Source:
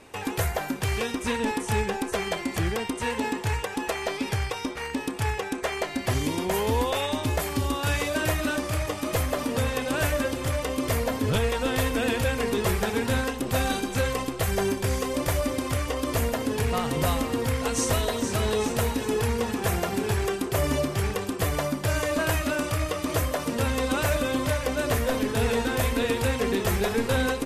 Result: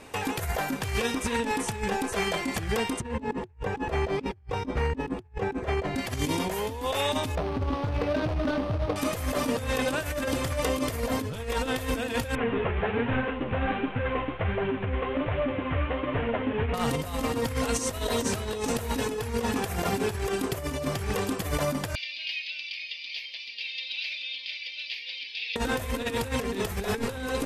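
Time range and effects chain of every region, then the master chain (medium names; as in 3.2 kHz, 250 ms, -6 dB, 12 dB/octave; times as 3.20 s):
3.00–5.96 s: high-pass 50 Hz + tilt EQ -4 dB/octave + loudspeaker Doppler distortion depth 0.11 ms
7.35–8.96 s: median filter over 25 samples + Savitzky-Golay filter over 15 samples + overload inside the chain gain 22.5 dB
12.35–16.74 s: CVSD coder 16 kbps + flange 1.3 Hz, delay 6.4 ms, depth 7.7 ms, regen +5%
21.95–25.56 s: elliptic band-pass 2.3–4.8 kHz + comb 6 ms, depth 34%
whole clip: compressor with a negative ratio -28 dBFS, ratio -0.5; band-stop 360 Hz, Q 12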